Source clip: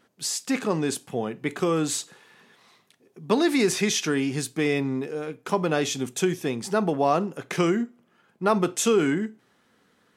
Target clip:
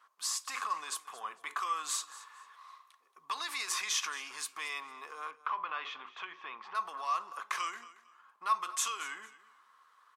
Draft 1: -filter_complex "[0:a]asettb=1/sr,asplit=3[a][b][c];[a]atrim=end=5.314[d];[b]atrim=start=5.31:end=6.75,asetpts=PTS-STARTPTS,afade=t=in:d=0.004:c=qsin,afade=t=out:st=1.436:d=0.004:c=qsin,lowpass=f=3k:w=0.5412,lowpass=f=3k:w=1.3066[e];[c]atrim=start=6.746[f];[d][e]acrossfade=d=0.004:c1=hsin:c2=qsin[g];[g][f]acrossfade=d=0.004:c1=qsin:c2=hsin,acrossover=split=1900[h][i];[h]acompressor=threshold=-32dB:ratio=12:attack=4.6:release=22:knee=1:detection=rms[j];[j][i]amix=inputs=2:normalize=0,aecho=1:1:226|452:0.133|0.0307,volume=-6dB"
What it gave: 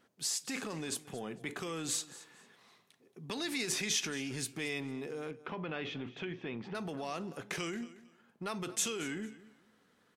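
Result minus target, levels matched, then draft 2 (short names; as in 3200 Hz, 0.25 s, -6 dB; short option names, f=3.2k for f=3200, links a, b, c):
1000 Hz band -10.0 dB
-filter_complex "[0:a]asettb=1/sr,asplit=3[a][b][c];[a]atrim=end=5.314[d];[b]atrim=start=5.31:end=6.75,asetpts=PTS-STARTPTS,afade=t=in:d=0.004:c=qsin,afade=t=out:st=1.436:d=0.004:c=qsin,lowpass=f=3k:w=0.5412,lowpass=f=3k:w=1.3066[e];[c]atrim=start=6.746[f];[d][e]acrossfade=d=0.004:c1=hsin:c2=qsin[g];[g][f]acrossfade=d=0.004:c1=qsin:c2=hsin,acrossover=split=1900[h][i];[h]acompressor=threshold=-32dB:ratio=12:attack=4.6:release=22:knee=1:detection=rms,highpass=f=1.1k:t=q:w=13[j];[j][i]amix=inputs=2:normalize=0,aecho=1:1:226|452:0.133|0.0307,volume=-6dB"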